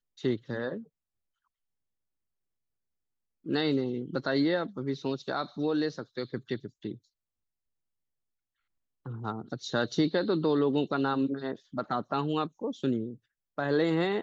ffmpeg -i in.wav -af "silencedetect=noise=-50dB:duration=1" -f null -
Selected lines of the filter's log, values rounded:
silence_start: 0.84
silence_end: 3.45 | silence_duration: 2.61
silence_start: 6.98
silence_end: 9.06 | silence_duration: 2.08